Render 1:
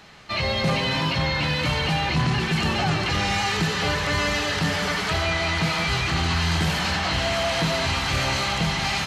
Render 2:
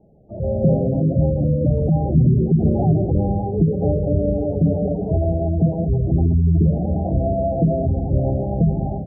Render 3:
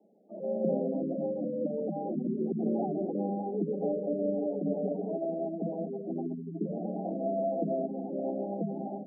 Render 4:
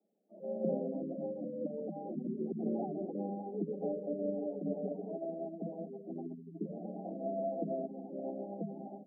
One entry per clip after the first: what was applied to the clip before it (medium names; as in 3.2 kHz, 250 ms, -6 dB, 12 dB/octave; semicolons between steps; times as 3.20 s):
steep low-pass 650 Hz 36 dB/octave; spectral gate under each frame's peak -20 dB strong; level rider gain up to 9 dB
steep high-pass 190 Hz 72 dB/octave; trim -8.5 dB
upward expansion 1.5:1, over -50 dBFS; trim -4 dB